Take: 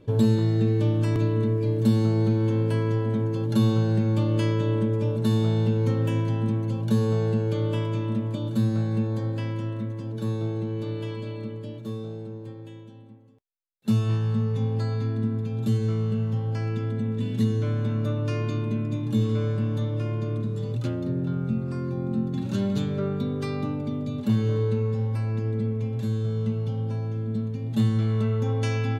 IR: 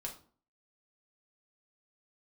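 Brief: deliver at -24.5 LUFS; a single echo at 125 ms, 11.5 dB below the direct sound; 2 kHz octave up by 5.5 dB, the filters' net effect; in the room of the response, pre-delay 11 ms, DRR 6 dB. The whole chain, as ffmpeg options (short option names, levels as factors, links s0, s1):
-filter_complex "[0:a]equalizer=f=2000:t=o:g=7,aecho=1:1:125:0.266,asplit=2[s0][s1];[1:a]atrim=start_sample=2205,adelay=11[s2];[s1][s2]afir=irnorm=-1:irlink=0,volume=0.596[s3];[s0][s3]amix=inputs=2:normalize=0,volume=1.19"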